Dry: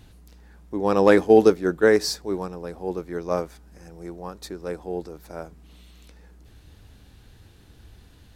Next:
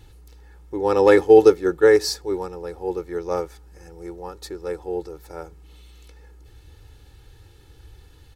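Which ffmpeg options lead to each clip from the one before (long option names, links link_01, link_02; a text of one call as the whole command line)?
ffmpeg -i in.wav -af "aecho=1:1:2.3:0.74,volume=-1dB" out.wav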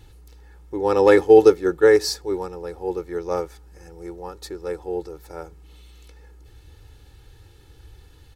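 ffmpeg -i in.wav -af anull out.wav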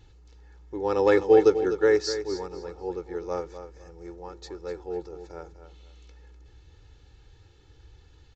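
ffmpeg -i in.wav -filter_complex "[0:a]asplit=2[link_01][link_02];[link_02]aecho=0:1:250|500|750:0.282|0.0705|0.0176[link_03];[link_01][link_03]amix=inputs=2:normalize=0,aresample=16000,aresample=44100,volume=-6dB" out.wav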